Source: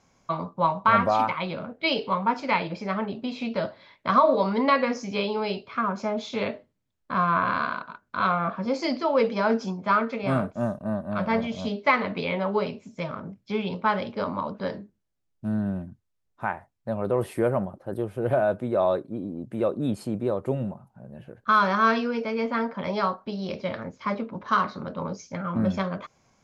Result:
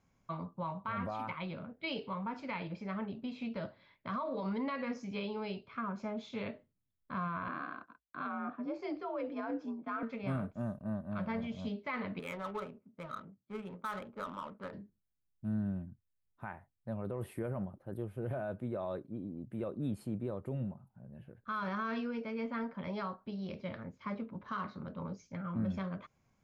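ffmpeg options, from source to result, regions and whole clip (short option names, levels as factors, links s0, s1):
-filter_complex "[0:a]asettb=1/sr,asplit=3[s0][s1][s2];[s0]atrim=end=7.484[s3];[s1]atrim=start=7.48:end=10.03,asetpts=PTS-STARTPTS,afade=t=in:d=0.004:c=qsin,afade=t=out:st=2.546:d=0.004:c=qsin,lowpass=f=1600:p=1,agate=range=0.0224:threshold=0.0112:ratio=3:release=100:detection=peak,afreqshift=54[s4];[s2]atrim=start=10.026[s5];[s3][s4]acrossfade=d=0.004:c1=hsin:c2=qsin[s6];[s6][s5]acrossfade=d=0.004:c1=qsin:c2=hsin,asettb=1/sr,asplit=3[s7][s8][s9];[s7]atrim=end=12.194[s10];[s8]atrim=start=12.19:end=14.73,asetpts=PTS-STARTPTS,afade=t=in:d=0.004:c=qsin,afade=t=out:st=2.536:d=0.004:c=qsin,highpass=f=400:p=1,equalizer=f=1300:t=o:w=0.3:g=12.5,adynamicsmooth=sensitivity=3:basefreq=640[s11];[s9]atrim=start=14.726[s12];[s10][s11]acrossfade=d=0.004:c1=hsin:c2=qsin[s13];[s13][s12]acrossfade=d=0.004:c1=qsin:c2=hsin,equalizer=f=5800:t=o:w=1.7:g=-12.5,alimiter=limit=0.126:level=0:latency=1:release=45,equalizer=f=670:t=o:w=2.9:g=-9,volume=0.596"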